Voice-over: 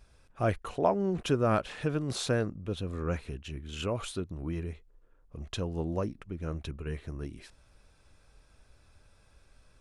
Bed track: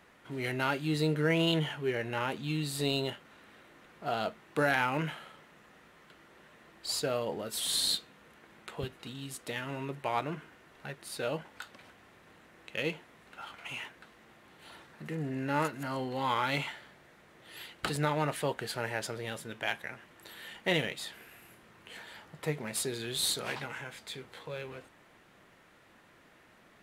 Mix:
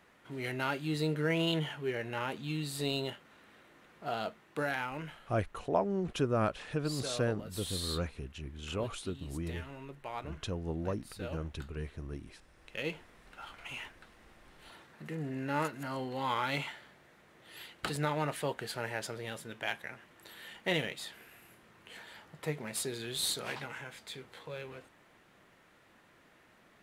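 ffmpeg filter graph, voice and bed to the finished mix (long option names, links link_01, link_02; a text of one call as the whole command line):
ffmpeg -i stem1.wav -i stem2.wav -filter_complex "[0:a]adelay=4900,volume=-3.5dB[link_01];[1:a]volume=3.5dB,afade=type=out:start_time=4.15:duration=0.83:silence=0.501187,afade=type=in:start_time=12.52:duration=0.41:silence=0.473151[link_02];[link_01][link_02]amix=inputs=2:normalize=0" out.wav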